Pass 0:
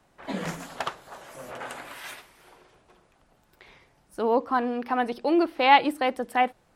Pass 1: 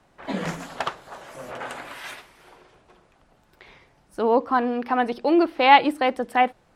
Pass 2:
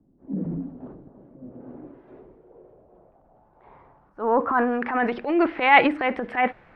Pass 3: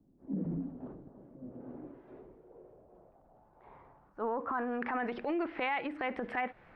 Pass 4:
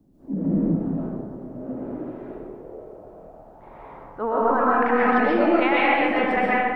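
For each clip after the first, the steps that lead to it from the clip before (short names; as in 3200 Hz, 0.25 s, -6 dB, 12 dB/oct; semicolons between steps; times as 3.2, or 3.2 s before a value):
high shelf 9100 Hz -9 dB; gain +3.5 dB
transient shaper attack -10 dB, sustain +7 dB; low-pass sweep 270 Hz -> 2100 Hz, 1.55–5.15; gain -1 dB
compressor 20:1, threshold -25 dBFS, peak gain reduction 17 dB; gain -5 dB
digital reverb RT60 1.4 s, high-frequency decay 0.6×, pre-delay 90 ms, DRR -7 dB; gain +8 dB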